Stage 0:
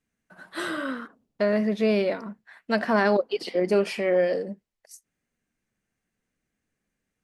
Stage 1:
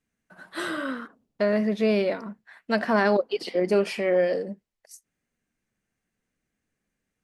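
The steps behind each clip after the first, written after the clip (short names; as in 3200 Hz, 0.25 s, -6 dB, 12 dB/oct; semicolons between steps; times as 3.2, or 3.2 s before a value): nothing audible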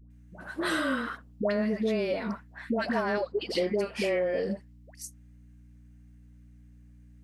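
compressor 12:1, threshold -30 dBFS, peak gain reduction 14 dB; hum 60 Hz, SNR 21 dB; dispersion highs, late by 0.105 s, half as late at 760 Hz; gain +5.5 dB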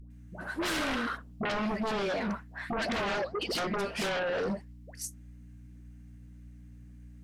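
flange 1.7 Hz, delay 0.4 ms, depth 9.5 ms, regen +81%; sine folder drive 13 dB, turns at -19.5 dBFS; gain -8.5 dB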